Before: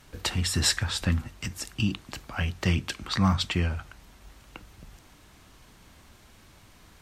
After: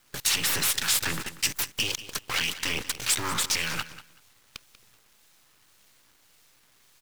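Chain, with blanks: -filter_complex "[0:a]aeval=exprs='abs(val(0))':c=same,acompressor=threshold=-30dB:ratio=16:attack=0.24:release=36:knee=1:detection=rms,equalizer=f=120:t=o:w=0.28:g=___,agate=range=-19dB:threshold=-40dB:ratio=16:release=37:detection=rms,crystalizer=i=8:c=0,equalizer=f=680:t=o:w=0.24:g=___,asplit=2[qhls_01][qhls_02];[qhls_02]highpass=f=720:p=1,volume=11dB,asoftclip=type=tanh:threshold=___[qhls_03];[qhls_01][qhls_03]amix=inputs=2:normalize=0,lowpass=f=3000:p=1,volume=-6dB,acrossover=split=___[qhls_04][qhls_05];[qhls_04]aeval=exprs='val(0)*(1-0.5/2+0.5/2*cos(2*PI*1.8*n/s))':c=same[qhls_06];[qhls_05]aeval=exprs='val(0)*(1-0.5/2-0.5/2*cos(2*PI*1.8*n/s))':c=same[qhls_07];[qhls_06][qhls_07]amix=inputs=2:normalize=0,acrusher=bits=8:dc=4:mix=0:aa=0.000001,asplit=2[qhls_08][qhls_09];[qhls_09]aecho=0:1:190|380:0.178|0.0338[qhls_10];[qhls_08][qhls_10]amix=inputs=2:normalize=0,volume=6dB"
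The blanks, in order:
12.5, -7.5, -9dB, 2100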